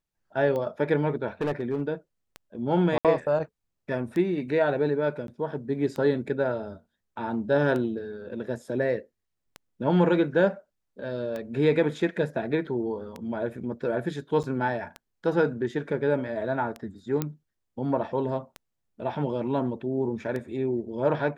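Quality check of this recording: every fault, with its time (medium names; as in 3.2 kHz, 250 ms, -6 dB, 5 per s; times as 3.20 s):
tick 33 1/3 rpm -21 dBFS
1.41–1.82 s: clipped -22.5 dBFS
2.98–3.05 s: dropout 67 ms
5.27–5.28 s: dropout 12 ms
14.43–14.44 s: dropout 7.7 ms
17.22 s: pop -13 dBFS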